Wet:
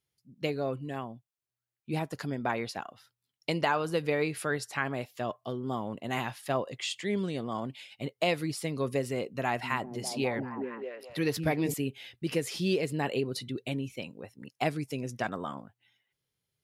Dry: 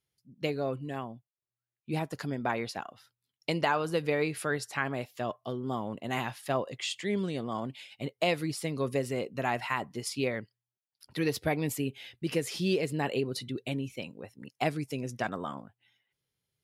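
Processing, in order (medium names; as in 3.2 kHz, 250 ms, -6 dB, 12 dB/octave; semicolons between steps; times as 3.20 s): 9.43–11.74 s: repeats whose band climbs or falls 200 ms, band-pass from 190 Hz, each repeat 0.7 oct, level -0.5 dB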